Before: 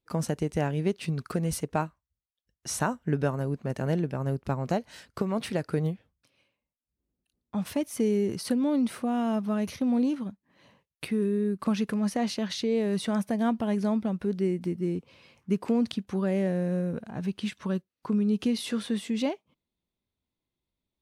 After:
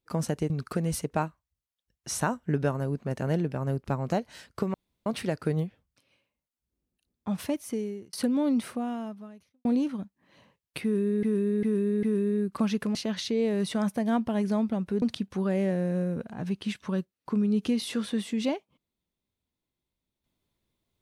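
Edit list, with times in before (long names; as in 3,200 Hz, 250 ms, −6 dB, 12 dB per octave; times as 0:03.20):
0:00.50–0:01.09: remove
0:05.33: splice in room tone 0.32 s
0:07.71–0:08.40: fade out
0:08.92–0:09.92: fade out quadratic
0:11.10–0:11.50: repeat, 4 plays
0:12.02–0:12.28: remove
0:14.35–0:15.79: remove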